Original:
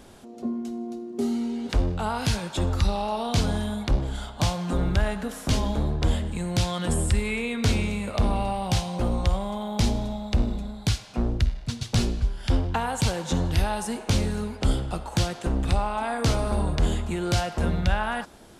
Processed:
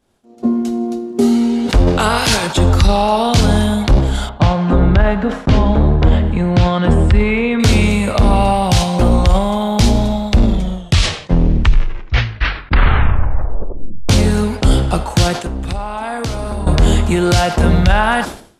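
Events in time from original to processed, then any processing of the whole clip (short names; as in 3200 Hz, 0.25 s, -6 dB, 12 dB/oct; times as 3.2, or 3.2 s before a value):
1.86–2.46 spectral limiter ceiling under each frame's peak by 14 dB
4.29–7.6 Bessel low-pass 2000 Hz
10.28 tape stop 3.81 s
15.33–16.67 compressor, threshold -31 dBFS
whole clip: expander -32 dBFS; maximiser +15.5 dB; sustainer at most 110 dB/s; gain -1.5 dB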